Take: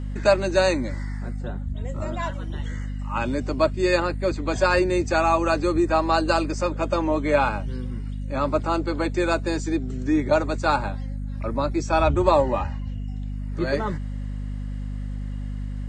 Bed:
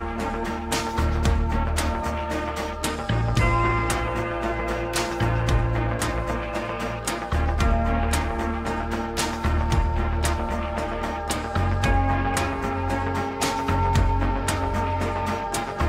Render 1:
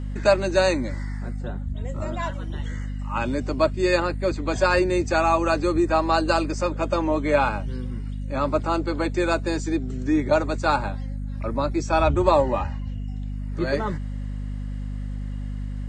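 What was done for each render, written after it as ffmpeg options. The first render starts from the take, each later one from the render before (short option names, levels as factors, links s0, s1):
-af anull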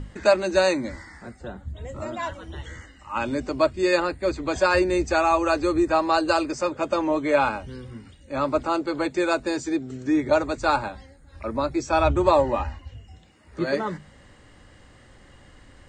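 -af "bandreject=f=50:t=h:w=6,bandreject=f=100:t=h:w=6,bandreject=f=150:t=h:w=6,bandreject=f=200:t=h:w=6,bandreject=f=250:t=h:w=6"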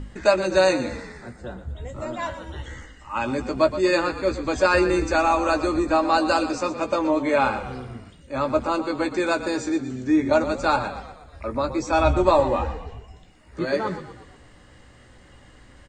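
-filter_complex "[0:a]asplit=2[s0][s1];[s1]adelay=16,volume=0.376[s2];[s0][s2]amix=inputs=2:normalize=0,asplit=6[s3][s4][s5][s6][s7][s8];[s4]adelay=120,afreqshift=-33,volume=0.251[s9];[s5]adelay=240,afreqshift=-66,volume=0.129[s10];[s6]adelay=360,afreqshift=-99,volume=0.0653[s11];[s7]adelay=480,afreqshift=-132,volume=0.0335[s12];[s8]adelay=600,afreqshift=-165,volume=0.017[s13];[s3][s9][s10][s11][s12][s13]amix=inputs=6:normalize=0"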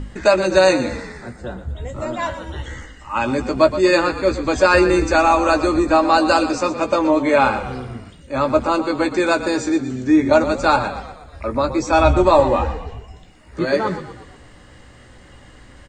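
-af "volume=1.88,alimiter=limit=0.794:level=0:latency=1"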